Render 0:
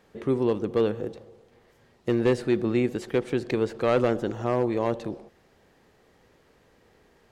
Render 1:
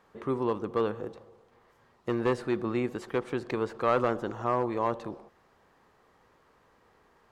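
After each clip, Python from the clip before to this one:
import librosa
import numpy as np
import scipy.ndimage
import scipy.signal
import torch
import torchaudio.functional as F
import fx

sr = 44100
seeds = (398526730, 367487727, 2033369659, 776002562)

y = fx.peak_eq(x, sr, hz=1100.0, db=11.5, octaves=0.97)
y = y * 10.0 ** (-6.5 / 20.0)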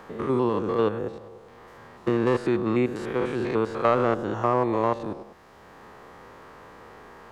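y = fx.spec_steps(x, sr, hold_ms=100)
y = fx.band_squash(y, sr, depth_pct=40)
y = y * 10.0 ** (7.0 / 20.0)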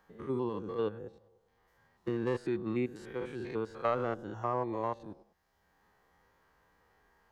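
y = fx.bin_expand(x, sr, power=1.5)
y = y * 10.0 ** (-8.0 / 20.0)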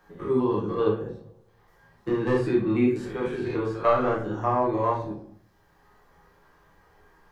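y = fx.room_shoebox(x, sr, seeds[0], volume_m3=50.0, walls='mixed', distance_m=0.92)
y = y * 10.0 ** (4.0 / 20.0)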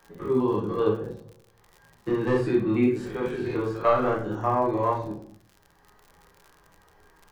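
y = fx.dmg_crackle(x, sr, seeds[1], per_s=73.0, level_db=-40.0)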